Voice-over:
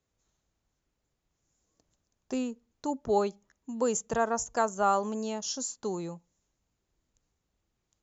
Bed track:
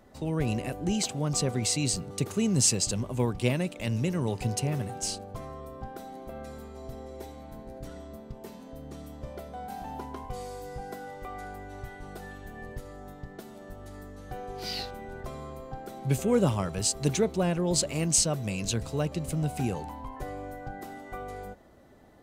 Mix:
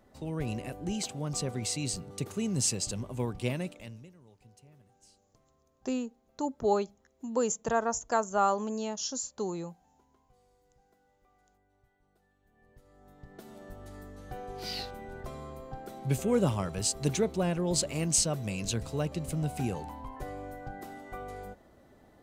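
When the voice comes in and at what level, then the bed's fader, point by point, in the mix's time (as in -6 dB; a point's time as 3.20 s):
3.55 s, -0.5 dB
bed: 3.69 s -5.5 dB
4.18 s -29 dB
12.35 s -29 dB
13.52 s -2.5 dB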